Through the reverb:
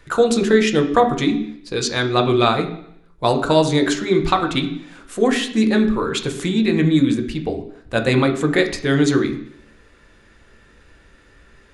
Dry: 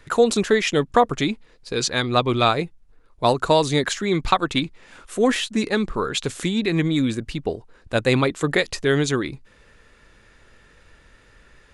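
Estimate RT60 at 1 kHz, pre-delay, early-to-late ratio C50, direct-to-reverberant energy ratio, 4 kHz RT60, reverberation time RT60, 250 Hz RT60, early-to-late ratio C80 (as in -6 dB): 0.70 s, 3 ms, 10.0 dB, 3.5 dB, 0.70 s, 0.70 s, 0.70 s, 13.0 dB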